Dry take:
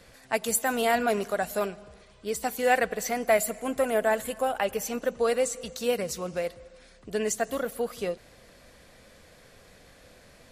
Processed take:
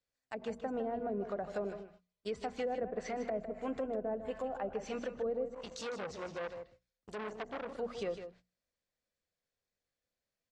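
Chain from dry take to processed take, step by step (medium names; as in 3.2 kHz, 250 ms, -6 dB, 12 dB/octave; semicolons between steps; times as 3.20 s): gate -42 dBFS, range -35 dB; hum notches 60/120/180/240 Hz; low-pass that closes with the level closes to 410 Hz, closed at -22 dBFS; low-pass 7.5 kHz 24 dB/octave; treble shelf 5.1 kHz +11.5 dB; peak limiter -23.5 dBFS, peak gain reduction 11 dB; delay 155 ms -9.5 dB; 5.54–7.79 s: transformer saturation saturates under 1.5 kHz; trim -5 dB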